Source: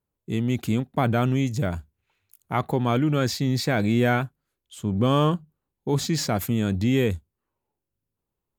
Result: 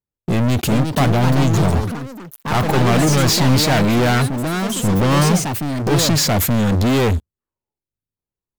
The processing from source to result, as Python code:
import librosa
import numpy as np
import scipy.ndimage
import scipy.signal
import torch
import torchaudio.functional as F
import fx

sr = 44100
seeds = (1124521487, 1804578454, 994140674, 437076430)

y = np.clip(x, -10.0 ** (-15.0 / 20.0), 10.0 ** (-15.0 / 20.0))
y = fx.low_shelf(y, sr, hz=210.0, db=2.5)
y = fx.env_flanger(y, sr, rest_ms=7.9, full_db=-21.0, at=(1.05, 2.54))
y = fx.leveller(y, sr, passes=5)
y = fx.echo_pitch(y, sr, ms=462, semitones=4, count=3, db_per_echo=-6.0)